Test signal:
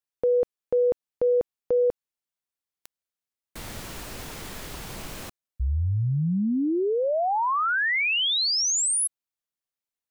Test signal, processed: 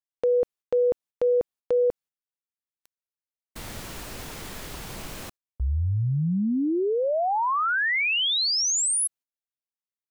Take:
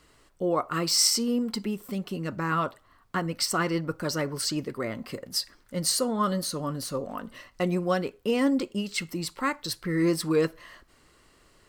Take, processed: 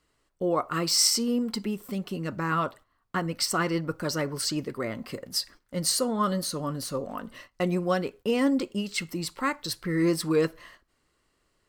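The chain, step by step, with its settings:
noise gate −47 dBFS, range −12 dB

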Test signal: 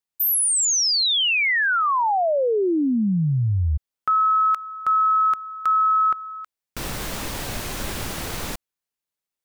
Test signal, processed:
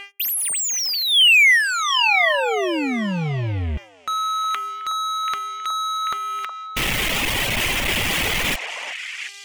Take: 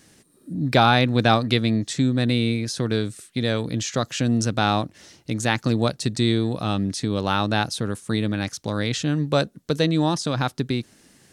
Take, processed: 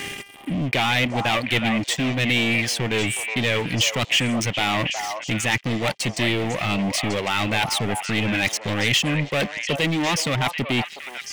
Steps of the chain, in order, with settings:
hum with harmonics 400 Hz, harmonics 8, −56 dBFS −4 dB per octave
reverb reduction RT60 1.4 s
reversed playback
downward compressor 5 to 1, threshold −34 dBFS
reversed playback
leveller curve on the samples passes 5
flat-topped bell 2,500 Hz +11 dB 1 octave
on a send: echo through a band-pass that steps 367 ms, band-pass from 810 Hz, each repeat 1.4 octaves, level −3 dB

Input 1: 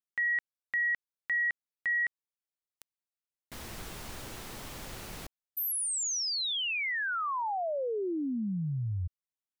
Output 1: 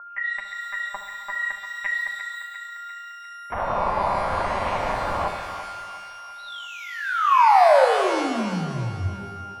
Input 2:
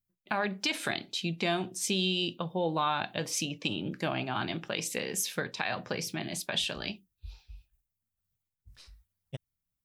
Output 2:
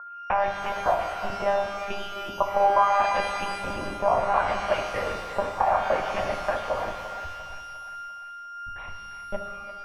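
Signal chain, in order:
one scale factor per block 7 bits
camcorder AGC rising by 6.5 dB per second
noise gate −49 dBFS, range −29 dB
one-pitch LPC vocoder at 8 kHz 200 Hz
steady tone 1,400 Hz −44 dBFS
auto-filter low-pass sine 0.69 Hz 980–2,400 Hz
high-shelf EQ 2,500 Hz −8 dB
downward compressor, threshold −25 dBFS
flat-topped bell 780 Hz +12.5 dB 1.3 octaves
mains-hum notches 50/100/150/200/250/300/350/400 Hz
on a send: feedback echo with a high-pass in the loop 348 ms, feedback 59%, high-pass 670 Hz, level −9 dB
on the sum: reverb with rising layers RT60 1.5 s, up +12 semitones, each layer −8 dB, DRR 4.5 dB
level −1 dB

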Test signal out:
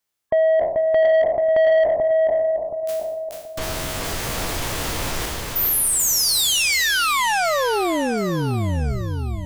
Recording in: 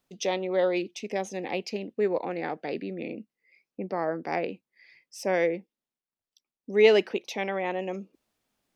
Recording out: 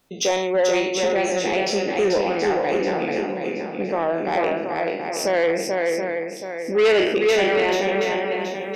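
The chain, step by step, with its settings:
peak hold with a decay on every bin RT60 0.64 s
in parallel at −2.5 dB: downward compressor, threshold −34 dBFS
on the sum: dynamic equaliser 200 Hz, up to −4 dB, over −42 dBFS, Q 1.2
gate on every frequency bin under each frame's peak −30 dB strong
feedback echo with a long and a short gap by turns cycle 726 ms, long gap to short 1.5 to 1, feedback 35%, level −4 dB
soft clipping −18.5 dBFS
level +6 dB

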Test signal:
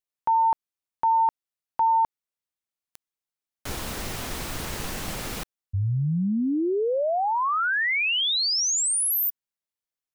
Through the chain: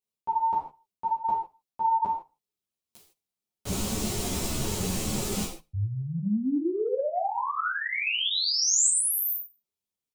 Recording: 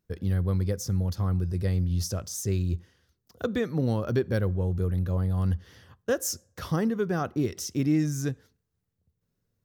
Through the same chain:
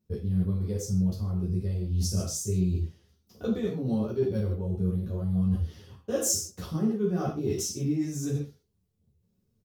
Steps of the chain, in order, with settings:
graphic EQ with 15 bands 160 Hz +11 dB, 400 Hz +5 dB, 1,600 Hz −10 dB
on a send: repeating echo 76 ms, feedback 36%, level −23.5 dB
on the sum: reverb whose tail is shaped and stops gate 180 ms falling, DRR −2.5 dB
reversed playback
downward compressor 6 to 1, threshold −22 dBFS
reversed playback
dynamic equaliser 7,400 Hz, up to +7 dB, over −46 dBFS, Q 1.6
string-ensemble chorus

